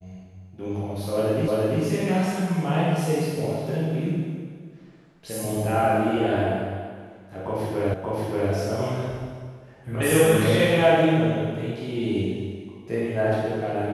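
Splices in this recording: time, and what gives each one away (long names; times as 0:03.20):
0:01.48: the same again, the last 0.34 s
0:07.94: the same again, the last 0.58 s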